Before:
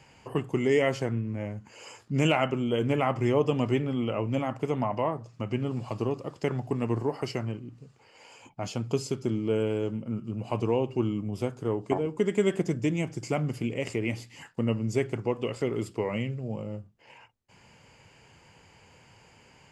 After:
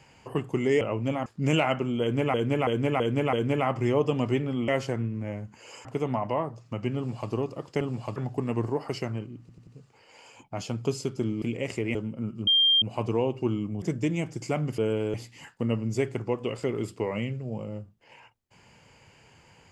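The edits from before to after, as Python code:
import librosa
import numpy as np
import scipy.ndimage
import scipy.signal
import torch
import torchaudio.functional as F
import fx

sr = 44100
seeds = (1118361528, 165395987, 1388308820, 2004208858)

y = fx.edit(x, sr, fx.swap(start_s=0.81, length_s=1.17, other_s=4.08, other_length_s=0.45),
    fx.repeat(start_s=2.73, length_s=0.33, count=5),
    fx.duplicate(start_s=5.64, length_s=0.35, to_s=6.49),
    fx.stutter(start_s=7.73, slice_s=0.09, count=4),
    fx.swap(start_s=9.48, length_s=0.36, other_s=13.59, other_length_s=0.53),
    fx.insert_tone(at_s=10.36, length_s=0.35, hz=3190.0, db=-17.5),
    fx.cut(start_s=11.36, length_s=1.27), tone=tone)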